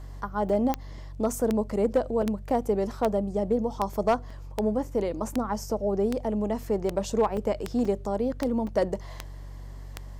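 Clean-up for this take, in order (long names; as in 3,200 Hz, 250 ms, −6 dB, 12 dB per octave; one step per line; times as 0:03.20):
clipped peaks rebuilt −15 dBFS
click removal
hum removal 47.2 Hz, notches 3
repair the gap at 0:00.49/0:02.22/0:04.30/0:07.37/0:07.85/0:08.67, 4 ms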